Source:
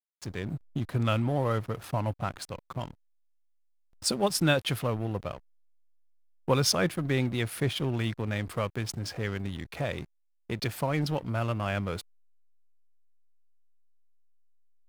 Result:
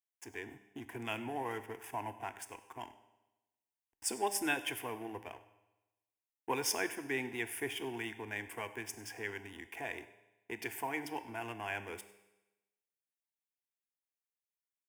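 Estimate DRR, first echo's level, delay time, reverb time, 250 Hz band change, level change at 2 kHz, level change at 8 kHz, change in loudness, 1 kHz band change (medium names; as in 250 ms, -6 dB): 11.0 dB, -21.0 dB, 99 ms, 1.0 s, -11.5 dB, -3.5 dB, -4.5 dB, -9.0 dB, -5.5 dB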